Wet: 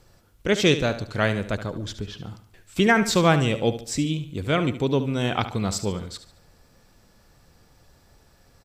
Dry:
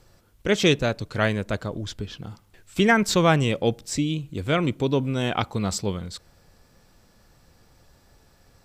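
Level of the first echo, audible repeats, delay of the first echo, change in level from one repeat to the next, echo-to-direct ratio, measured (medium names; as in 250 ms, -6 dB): -12.0 dB, 3, 72 ms, -8.5 dB, -11.5 dB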